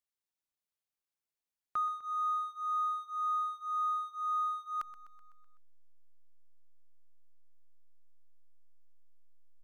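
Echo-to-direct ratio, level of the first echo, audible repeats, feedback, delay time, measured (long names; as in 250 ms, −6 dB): −13.0 dB, −15.0 dB, 5, 59%, 126 ms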